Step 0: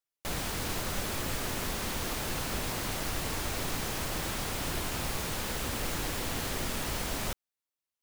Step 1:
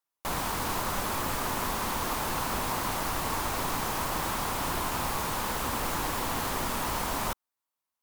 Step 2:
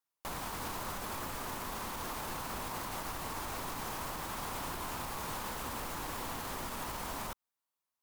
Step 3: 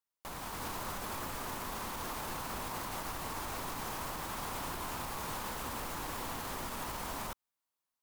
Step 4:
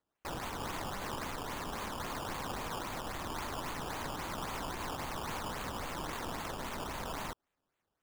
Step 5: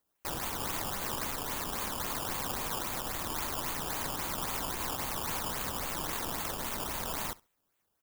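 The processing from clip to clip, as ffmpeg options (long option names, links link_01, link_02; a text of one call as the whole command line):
ffmpeg -i in.wav -af "equalizer=frequency=250:width_type=o:width=1:gain=3,equalizer=frequency=1000:width_type=o:width=1:gain=12,equalizer=frequency=16000:width_type=o:width=1:gain=5,volume=-1dB" out.wav
ffmpeg -i in.wav -af "alimiter=level_in=3.5dB:limit=-24dB:level=0:latency=1:release=114,volume=-3.5dB,volume=-2.5dB" out.wav
ffmpeg -i in.wav -af "dynaudnorm=framelen=320:gausssize=3:maxgain=4dB,volume=-4dB" out.wav
ffmpeg -i in.wav -af "alimiter=level_in=9.5dB:limit=-24dB:level=0:latency=1:release=97,volume=-9.5dB,acrusher=samples=15:mix=1:aa=0.000001:lfo=1:lforange=15:lforate=3.7,volume=3.5dB" out.wav
ffmpeg -i in.wav -af "aemphasis=mode=production:type=50kf,aecho=1:1:67|134:0.075|0.0135,volume=1dB" out.wav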